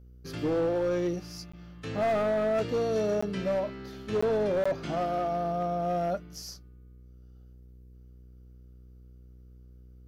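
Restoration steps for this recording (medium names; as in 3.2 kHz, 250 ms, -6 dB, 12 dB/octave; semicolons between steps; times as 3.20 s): clip repair -23 dBFS; de-hum 61.9 Hz, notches 8; interpolate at 1.52/3.21/4.21/4.64 s, 15 ms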